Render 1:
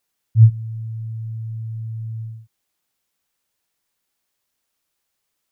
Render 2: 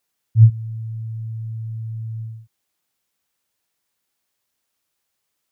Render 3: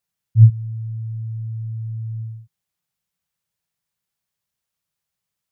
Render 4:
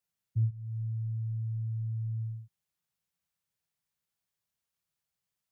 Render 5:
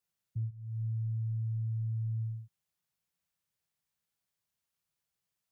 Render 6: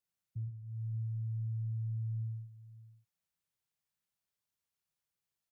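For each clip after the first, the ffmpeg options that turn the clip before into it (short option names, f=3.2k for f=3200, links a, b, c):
-af "highpass=42"
-af "lowshelf=f=210:t=q:w=3:g=6,volume=-7dB"
-filter_complex "[0:a]acrossover=split=88|180[a][b][c];[a]acompressor=threshold=-32dB:ratio=4[d];[b]acompressor=threshold=-29dB:ratio=4[e];[c]acompressor=threshold=-40dB:ratio=4[f];[d][e][f]amix=inputs=3:normalize=0,volume=-5.5dB"
-af "alimiter=level_in=5.5dB:limit=-24dB:level=0:latency=1:release=412,volume=-5.5dB"
-af "aecho=1:1:114|572:0.335|0.168,volume=-4.5dB"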